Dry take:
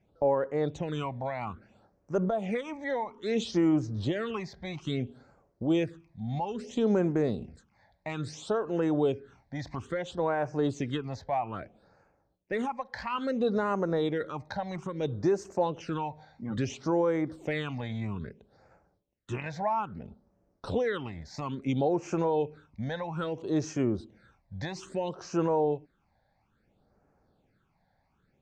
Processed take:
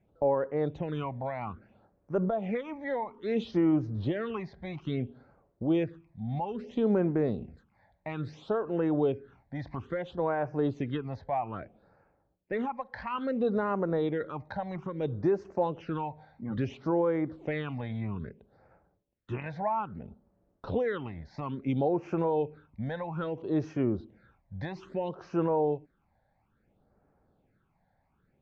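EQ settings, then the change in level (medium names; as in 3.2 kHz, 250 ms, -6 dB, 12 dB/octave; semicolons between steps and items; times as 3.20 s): distance through air 220 m; treble shelf 7.3 kHz -12 dB; 0.0 dB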